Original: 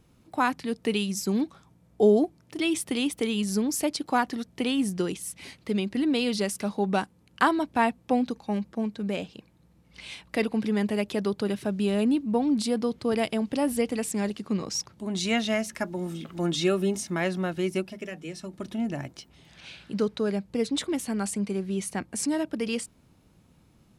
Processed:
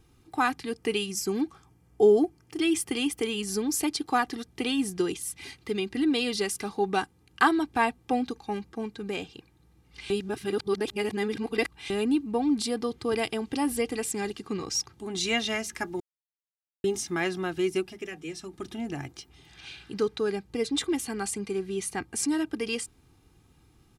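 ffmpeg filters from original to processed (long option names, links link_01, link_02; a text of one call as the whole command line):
ffmpeg -i in.wav -filter_complex "[0:a]asettb=1/sr,asplit=3[link_01][link_02][link_03];[link_01]atrim=end=0.694[link_04];[link_02]atrim=start=0.69:end=3.49,asetpts=PTS-STARTPTS,afade=type=in:duration=0.004:curve=qsin,afade=type=out:start_time=2.796:duration=0.004:curve=qsin,bandreject=frequency=3800:width=5.5[link_05];[link_03]atrim=start=3.486[link_06];[link_04][link_05]acrossfade=duration=0.004:curve1=hsin:curve2=qsin[link_07];[link_07][link_06]acrossfade=duration=0.004:curve1=qsin:curve2=hsin,asplit=5[link_08][link_09][link_10][link_11][link_12];[link_08]atrim=end=10.102[link_13];[link_09]atrim=start=10.098:end=11.902,asetpts=PTS-STARTPTS,areverse[link_14];[link_10]atrim=start=11.898:end=16,asetpts=PTS-STARTPTS,afade=type=out:start_time=4.098:duration=0.004:curve=hsin[link_15];[link_11]atrim=start=16:end=16.84,asetpts=PTS-STARTPTS,volume=0[link_16];[link_12]atrim=start=16.84,asetpts=PTS-STARTPTS,afade=type=in:duration=0.004:curve=hsin[link_17];[link_13][link_14]acrossfade=duration=0.004:curve1=hsin:curve2=hsin[link_18];[link_15][link_16][link_17]concat=n=3:v=0:a=1[link_19];[link_18][link_19]acrossfade=duration=0.004:curve1=hsin:curve2=hsin,equalizer=frequency=560:width=2.4:gain=-7.5,aecho=1:1:2.5:0.58" out.wav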